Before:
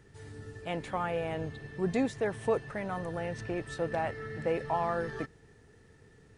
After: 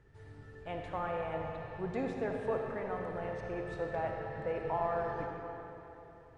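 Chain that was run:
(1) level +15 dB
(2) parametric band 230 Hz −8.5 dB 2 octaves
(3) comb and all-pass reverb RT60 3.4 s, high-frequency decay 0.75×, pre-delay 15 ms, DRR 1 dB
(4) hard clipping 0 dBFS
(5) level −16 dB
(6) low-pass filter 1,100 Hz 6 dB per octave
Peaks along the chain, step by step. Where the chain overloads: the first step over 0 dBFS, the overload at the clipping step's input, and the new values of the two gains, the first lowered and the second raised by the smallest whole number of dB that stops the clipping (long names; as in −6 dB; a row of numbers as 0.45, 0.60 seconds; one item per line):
−2.0, −5.0, −4.0, −4.0, −20.0, −21.5 dBFS
no step passes full scale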